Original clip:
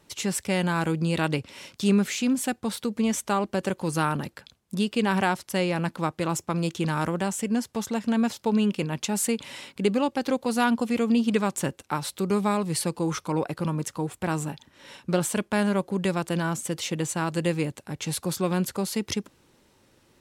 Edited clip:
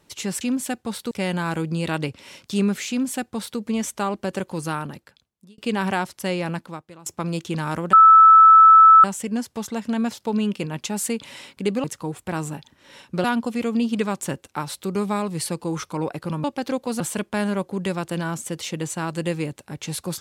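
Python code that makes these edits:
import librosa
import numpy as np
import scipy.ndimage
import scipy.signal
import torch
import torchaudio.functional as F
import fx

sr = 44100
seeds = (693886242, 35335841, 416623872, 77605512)

y = fx.edit(x, sr, fx.duplicate(start_s=2.19, length_s=0.7, to_s=0.41),
    fx.fade_out_span(start_s=3.76, length_s=1.12),
    fx.fade_out_to(start_s=5.81, length_s=0.55, curve='qua', floor_db=-20.0),
    fx.insert_tone(at_s=7.23, length_s=1.11, hz=1310.0, db=-6.5),
    fx.swap(start_s=10.03, length_s=0.56, other_s=13.79, other_length_s=1.4), tone=tone)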